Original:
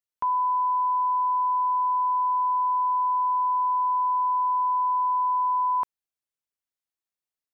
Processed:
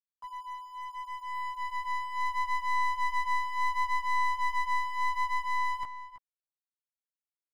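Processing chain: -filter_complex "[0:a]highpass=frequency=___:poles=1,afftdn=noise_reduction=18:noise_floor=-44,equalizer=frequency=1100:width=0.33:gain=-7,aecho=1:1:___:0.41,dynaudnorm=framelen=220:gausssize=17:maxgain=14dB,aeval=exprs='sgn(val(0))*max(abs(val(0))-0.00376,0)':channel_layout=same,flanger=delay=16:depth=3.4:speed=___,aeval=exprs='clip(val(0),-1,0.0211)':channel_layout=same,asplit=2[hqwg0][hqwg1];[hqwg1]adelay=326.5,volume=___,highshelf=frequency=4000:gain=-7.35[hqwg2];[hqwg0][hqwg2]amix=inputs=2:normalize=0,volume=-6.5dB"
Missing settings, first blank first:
820, 6, 0.71, -13dB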